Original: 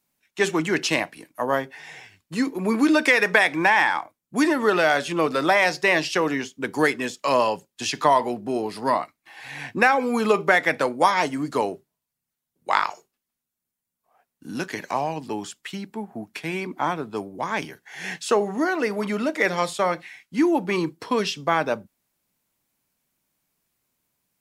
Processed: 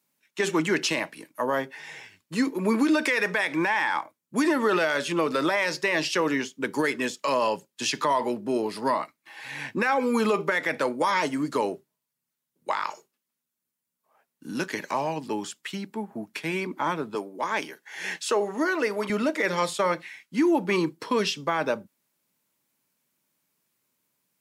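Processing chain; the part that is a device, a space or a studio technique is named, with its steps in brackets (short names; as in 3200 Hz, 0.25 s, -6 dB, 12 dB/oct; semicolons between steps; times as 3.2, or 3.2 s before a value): PA system with an anti-feedback notch (HPF 140 Hz 12 dB/oct; Butterworth band-stop 730 Hz, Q 7.6; limiter -14.5 dBFS, peak gain reduction 11 dB); 17.15–19.1 HPF 280 Hz 12 dB/oct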